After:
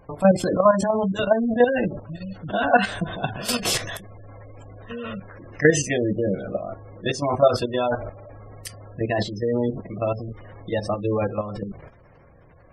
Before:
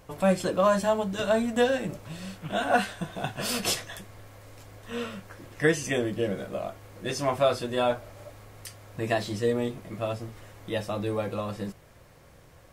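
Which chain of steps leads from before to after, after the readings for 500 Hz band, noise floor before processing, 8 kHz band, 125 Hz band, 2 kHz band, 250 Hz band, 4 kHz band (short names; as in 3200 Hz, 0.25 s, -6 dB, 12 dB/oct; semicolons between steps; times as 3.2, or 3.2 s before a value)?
+5.0 dB, -54 dBFS, +5.0 dB, +6.0 dB, +4.5 dB, +5.5 dB, +3.0 dB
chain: transient shaper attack +1 dB, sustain +6 dB; spectral gate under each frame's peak -20 dB strong; level quantiser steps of 10 dB; gain +8 dB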